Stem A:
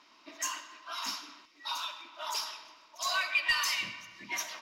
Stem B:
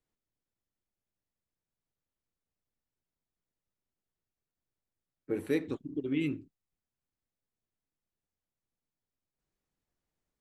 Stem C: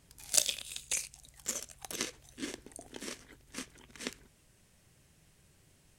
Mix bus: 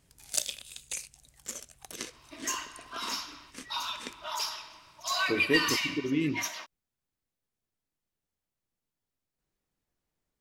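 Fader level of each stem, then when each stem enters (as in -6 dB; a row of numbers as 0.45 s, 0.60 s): +1.5 dB, +2.5 dB, -3.0 dB; 2.05 s, 0.00 s, 0.00 s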